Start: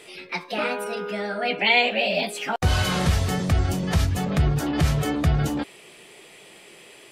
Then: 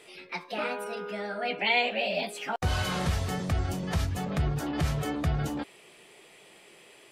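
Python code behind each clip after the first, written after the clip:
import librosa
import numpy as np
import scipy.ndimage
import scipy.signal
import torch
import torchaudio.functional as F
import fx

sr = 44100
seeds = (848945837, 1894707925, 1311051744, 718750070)

y = fx.peak_eq(x, sr, hz=910.0, db=2.5, octaves=2.0)
y = y * 10.0 ** (-7.5 / 20.0)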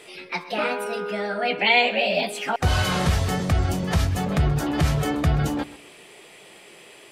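y = fx.echo_feedback(x, sr, ms=129, feedback_pct=30, wet_db=-18.0)
y = y * 10.0 ** (7.0 / 20.0)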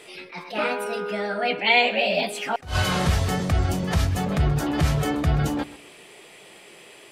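y = fx.attack_slew(x, sr, db_per_s=170.0)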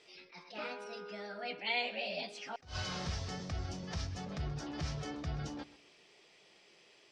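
y = fx.ladder_lowpass(x, sr, hz=6100.0, resonance_pct=60)
y = y * 10.0 ** (-7.0 / 20.0)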